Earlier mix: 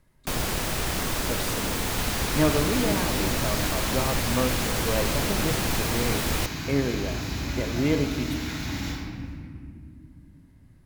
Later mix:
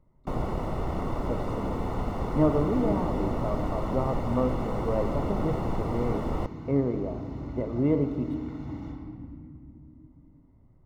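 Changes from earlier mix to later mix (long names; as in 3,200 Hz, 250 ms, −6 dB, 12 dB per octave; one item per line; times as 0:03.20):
second sound: send −7.5 dB
master: add Savitzky-Golay smoothing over 65 samples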